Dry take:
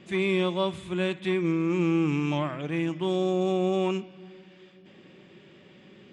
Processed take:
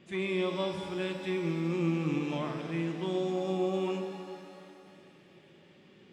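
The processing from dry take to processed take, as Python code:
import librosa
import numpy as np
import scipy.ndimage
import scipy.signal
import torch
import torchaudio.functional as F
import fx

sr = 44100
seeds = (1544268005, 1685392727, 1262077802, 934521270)

y = fx.rev_shimmer(x, sr, seeds[0], rt60_s=2.6, semitones=7, shimmer_db=-8, drr_db=5.0)
y = F.gain(torch.from_numpy(y), -7.0).numpy()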